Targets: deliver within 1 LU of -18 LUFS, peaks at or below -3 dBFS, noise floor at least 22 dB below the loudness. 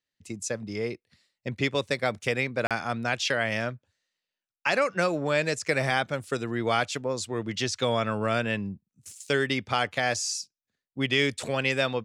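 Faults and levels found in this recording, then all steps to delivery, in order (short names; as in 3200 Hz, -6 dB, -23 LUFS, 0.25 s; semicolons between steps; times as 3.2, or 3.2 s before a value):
dropouts 1; longest dropout 37 ms; loudness -27.5 LUFS; peak -10.5 dBFS; loudness target -18.0 LUFS
-> interpolate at 2.67, 37 ms; gain +9.5 dB; limiter -3 dBFS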